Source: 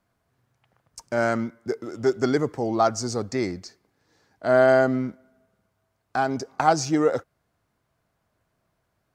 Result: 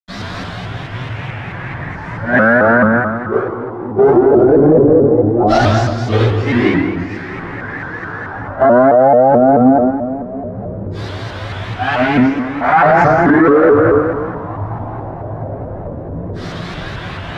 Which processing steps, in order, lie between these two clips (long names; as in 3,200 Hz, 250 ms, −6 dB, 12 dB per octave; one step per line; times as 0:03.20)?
converter with a step at zero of −20 dBFS
noise gate −19 dBFS, range −20 dB
auto-filter low-pass saw down 0.35 Hz 420–4,300 Hz
output level in coarse steps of 16 dB
time stretch by phase vocoder 1.9×
convolution reverb RT60 1.4 s, pre-delay 78 ms
boost into a limiter +30 dB
pitch modulation by a square or saw wave saw up 4.6 Hz, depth 160 cents
level −1 dB